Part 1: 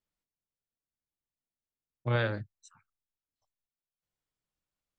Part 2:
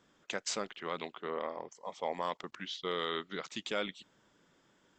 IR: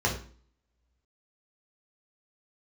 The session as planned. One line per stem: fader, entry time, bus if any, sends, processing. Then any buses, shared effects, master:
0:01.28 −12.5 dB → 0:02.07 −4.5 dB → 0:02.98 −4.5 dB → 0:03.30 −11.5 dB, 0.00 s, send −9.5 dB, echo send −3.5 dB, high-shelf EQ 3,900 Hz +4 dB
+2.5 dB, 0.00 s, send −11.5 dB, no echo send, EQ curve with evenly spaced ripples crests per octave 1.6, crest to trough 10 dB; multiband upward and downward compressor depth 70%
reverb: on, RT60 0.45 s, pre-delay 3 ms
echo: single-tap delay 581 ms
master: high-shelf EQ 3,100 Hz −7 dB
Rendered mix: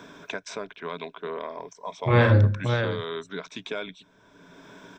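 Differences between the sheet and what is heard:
stem 1 −12.5 dB → −1.0 dB
stem 2: send off

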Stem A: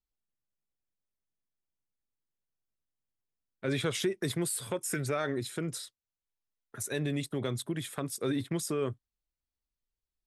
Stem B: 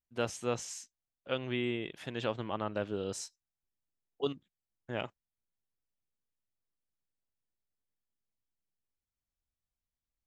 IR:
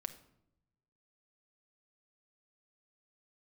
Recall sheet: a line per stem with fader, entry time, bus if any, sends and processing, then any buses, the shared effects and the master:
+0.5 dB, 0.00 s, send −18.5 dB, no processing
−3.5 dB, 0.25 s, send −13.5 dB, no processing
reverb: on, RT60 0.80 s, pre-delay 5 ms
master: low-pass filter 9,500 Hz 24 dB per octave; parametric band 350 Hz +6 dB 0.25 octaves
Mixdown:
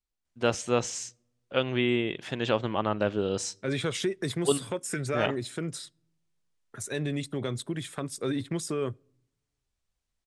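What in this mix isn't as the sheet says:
stem B −3.5 dB → +6.5 dB
master: missing parametric band 350 Hz +6 dB 0.25 octaves

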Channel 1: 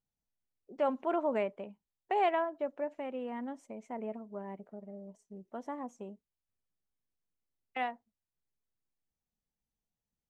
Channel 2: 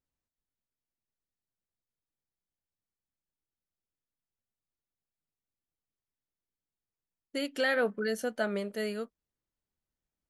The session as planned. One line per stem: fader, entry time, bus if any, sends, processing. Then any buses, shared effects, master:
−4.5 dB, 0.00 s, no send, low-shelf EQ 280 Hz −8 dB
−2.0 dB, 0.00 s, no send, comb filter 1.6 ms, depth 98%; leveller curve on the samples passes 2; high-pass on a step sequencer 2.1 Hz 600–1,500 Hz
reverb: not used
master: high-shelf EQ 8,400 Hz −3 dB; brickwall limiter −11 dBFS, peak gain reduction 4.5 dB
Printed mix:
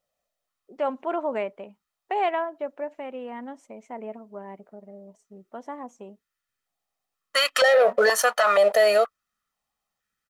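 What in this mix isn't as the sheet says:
stem 1 −4.5 dB → +5.5 dB
stem 2 −2.0 dB → +9.5 dB

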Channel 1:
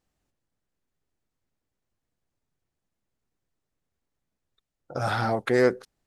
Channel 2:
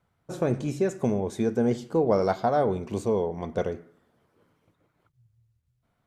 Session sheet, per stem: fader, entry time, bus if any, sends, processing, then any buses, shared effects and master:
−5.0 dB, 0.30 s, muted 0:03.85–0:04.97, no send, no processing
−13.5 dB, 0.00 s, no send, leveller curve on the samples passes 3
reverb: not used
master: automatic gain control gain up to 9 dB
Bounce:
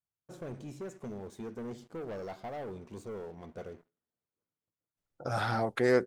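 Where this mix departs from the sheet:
stem 2 −13.5 dB → −24.0 dB
master: missing automatic gain control gain up to 9 dB

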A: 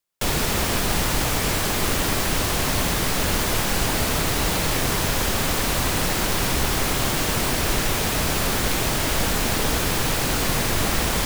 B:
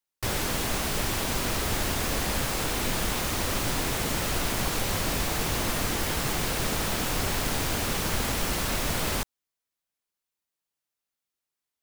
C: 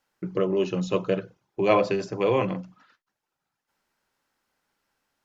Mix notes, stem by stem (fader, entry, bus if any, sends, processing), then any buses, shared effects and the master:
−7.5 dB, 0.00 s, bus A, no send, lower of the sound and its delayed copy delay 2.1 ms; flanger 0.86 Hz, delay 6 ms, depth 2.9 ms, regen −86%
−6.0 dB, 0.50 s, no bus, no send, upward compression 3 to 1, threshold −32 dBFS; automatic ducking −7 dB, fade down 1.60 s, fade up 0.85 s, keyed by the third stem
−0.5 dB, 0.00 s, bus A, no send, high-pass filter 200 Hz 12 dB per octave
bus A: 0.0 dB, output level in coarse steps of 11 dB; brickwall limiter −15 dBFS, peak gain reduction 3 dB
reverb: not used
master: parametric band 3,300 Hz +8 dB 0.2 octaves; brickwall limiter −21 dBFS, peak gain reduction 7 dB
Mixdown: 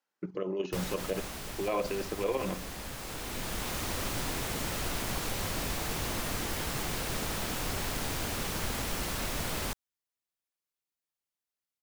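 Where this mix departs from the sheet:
stem A: muted
stem B: missing upward compression 3 to 1, threshold −32 dBFS
master: missing parametric band 3,300 Hz +8 dB 0.2 octaves

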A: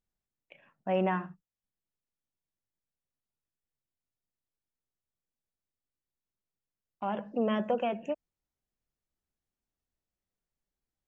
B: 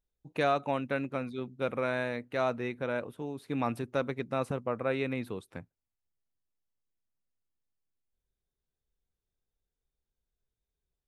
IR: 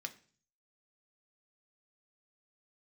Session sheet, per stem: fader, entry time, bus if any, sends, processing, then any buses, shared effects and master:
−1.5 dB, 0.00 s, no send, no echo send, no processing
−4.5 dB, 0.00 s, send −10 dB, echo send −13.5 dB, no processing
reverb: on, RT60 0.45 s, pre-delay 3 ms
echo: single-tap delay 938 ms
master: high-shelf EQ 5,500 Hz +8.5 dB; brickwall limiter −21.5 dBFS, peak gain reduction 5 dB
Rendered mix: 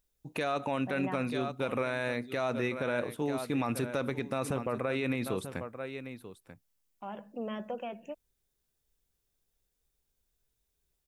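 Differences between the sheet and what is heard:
stem A −1.5 dB → −8.5 dB
stem B −4.5 dB → +4.5 dB

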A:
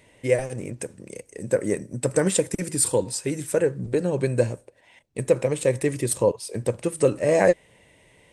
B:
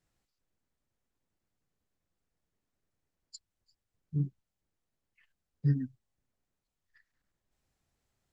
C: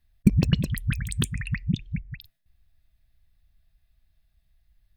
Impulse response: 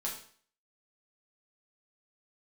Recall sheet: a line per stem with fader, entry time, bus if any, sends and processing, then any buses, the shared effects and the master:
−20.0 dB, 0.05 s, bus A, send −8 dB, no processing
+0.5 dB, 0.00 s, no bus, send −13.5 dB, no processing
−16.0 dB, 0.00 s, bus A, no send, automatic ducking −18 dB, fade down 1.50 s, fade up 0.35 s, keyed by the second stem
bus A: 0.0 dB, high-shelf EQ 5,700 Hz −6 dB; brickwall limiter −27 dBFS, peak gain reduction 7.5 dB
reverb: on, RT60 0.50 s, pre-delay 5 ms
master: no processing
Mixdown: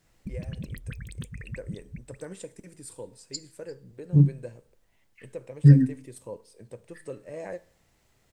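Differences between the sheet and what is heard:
stem A: send −8 dB → −15.5 dB
stem B +0.5 dB → +12.0 dB
stem C −16.0 dB → −9.0 dB

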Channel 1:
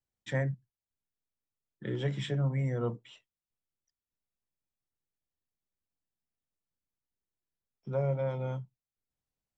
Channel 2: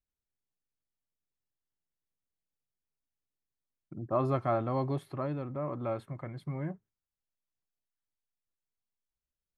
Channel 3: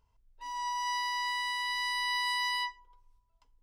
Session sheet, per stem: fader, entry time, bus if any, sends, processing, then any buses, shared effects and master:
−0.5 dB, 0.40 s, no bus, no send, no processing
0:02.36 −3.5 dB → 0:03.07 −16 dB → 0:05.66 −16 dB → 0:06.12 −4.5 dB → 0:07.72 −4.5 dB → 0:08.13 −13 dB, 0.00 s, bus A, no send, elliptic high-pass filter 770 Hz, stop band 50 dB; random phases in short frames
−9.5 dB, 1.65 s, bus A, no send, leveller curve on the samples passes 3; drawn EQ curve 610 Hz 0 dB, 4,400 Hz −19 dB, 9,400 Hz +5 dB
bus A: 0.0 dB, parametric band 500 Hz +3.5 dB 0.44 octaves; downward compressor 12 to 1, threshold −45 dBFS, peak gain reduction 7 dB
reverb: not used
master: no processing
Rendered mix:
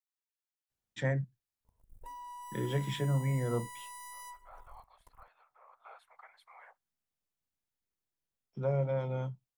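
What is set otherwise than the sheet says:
stem 1: entry 0.40 s → 0.70 s
stem 3 −9.5 dB → +2.0 dB

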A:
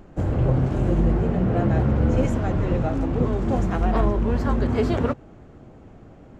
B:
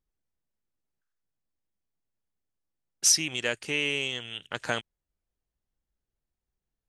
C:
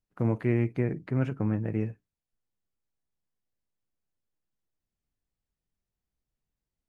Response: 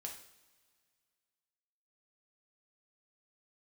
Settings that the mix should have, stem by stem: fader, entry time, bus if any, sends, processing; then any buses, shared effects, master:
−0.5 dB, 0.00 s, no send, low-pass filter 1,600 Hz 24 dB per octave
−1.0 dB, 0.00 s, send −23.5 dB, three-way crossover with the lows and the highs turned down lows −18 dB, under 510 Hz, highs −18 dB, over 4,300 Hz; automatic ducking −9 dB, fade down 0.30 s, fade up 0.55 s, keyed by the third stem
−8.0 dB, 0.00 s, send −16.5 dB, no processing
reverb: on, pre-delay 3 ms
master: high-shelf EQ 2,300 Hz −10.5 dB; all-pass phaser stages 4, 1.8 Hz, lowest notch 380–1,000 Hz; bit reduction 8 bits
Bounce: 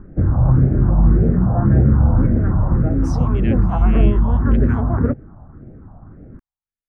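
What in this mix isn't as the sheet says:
stem A −0.5 dB → +7.5 dB
stem C −8.0 dB → −19.0 dB
master: missing bit reduction 8 bits

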